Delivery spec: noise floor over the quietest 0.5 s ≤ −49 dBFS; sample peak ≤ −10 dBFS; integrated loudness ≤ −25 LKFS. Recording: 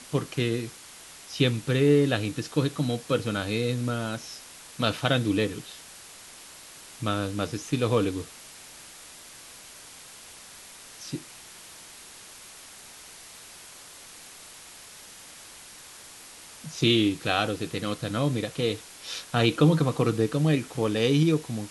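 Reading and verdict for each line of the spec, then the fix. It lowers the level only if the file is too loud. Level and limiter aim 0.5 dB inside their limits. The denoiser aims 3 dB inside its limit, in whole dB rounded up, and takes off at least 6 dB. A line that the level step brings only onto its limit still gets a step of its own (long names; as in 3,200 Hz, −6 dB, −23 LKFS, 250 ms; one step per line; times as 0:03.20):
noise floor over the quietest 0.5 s −47 dBFS: out of spec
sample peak −8.0 dBFS: out of spec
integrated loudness −26.5 LKFS: in spec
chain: broadband denoise 6 dB, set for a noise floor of −47 dBFS
brickwall limiter −10.5 dBFS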